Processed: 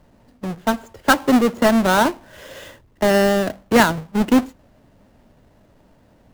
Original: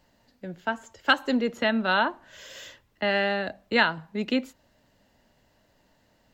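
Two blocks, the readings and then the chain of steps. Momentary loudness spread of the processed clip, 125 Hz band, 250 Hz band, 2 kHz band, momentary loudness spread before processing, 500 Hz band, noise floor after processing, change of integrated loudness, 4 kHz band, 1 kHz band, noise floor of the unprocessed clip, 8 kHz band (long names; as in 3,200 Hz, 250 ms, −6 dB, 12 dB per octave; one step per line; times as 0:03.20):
11 LU, +13.0 dB, +11.5 dB, +3.5 dB, 19 LU, +10.0 dB, −55 dBFS, +8.0 dB, +3.0 dB, +8.0 dB, −66 dBFS, can't be measured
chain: each half-wave held at its own peak
tilt shelving filter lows +5 dB, about 1,300 Hz
level +2.5 dB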